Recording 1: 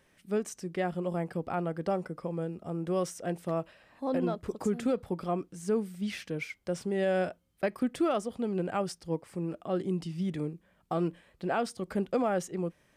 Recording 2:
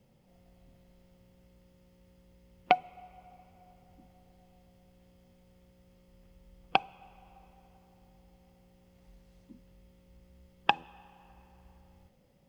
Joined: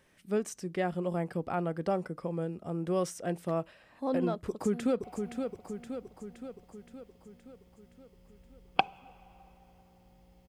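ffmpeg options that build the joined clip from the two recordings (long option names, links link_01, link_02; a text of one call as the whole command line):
ffmpeg -i cue0.wav -i cue1.wav -filter_complex "[0:a]apad=whole_dur=10.48,atrim=end=10.48,atrim=end=5.042[link_01];[1:a]atrim=start=2.998:end=8.44[link_02];[link_01][link_02]acrossfade=duration=0.004:curve1=hsin:curve2=hsin,asplit=2[link_03][link_04];[link_04]afade=type=in:start_time=4.48:duration=0.01,afade=type=out:start_time=5.04:duration=0.01,aecho=0:1:520|1040|1560|2080|2600|3120|3640|4160:0.501187|0.300712|0.180427|0.108256|0.0649539|0.0389723|0.0233834|0.01403[link_05];[link_03][link_05]amix=inputs=2:normalize=0" out.wav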